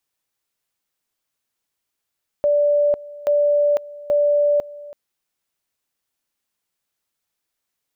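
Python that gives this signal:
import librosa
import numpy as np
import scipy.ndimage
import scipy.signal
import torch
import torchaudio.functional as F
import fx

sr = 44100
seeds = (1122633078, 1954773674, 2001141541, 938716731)

y = fx.two_level_tone(sr, hz=584.0, level_db=-13.5, drop_db=20.0, high_s=0.5, low_s=0.33, rounds=3)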